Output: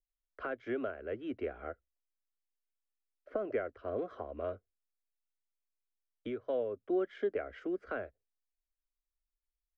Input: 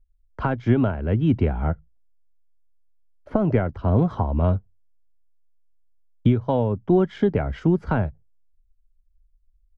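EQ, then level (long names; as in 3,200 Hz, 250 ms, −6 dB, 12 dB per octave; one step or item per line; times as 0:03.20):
three-way crossover with the lows and the highs turned down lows −19 dB, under 460 Hz, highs −15 dB, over 2,100 Hz
low-shelf EQ 120 Hz −8.5 dB
phaser with its sweep stopped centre 370 Hz, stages 4
−2.5 dB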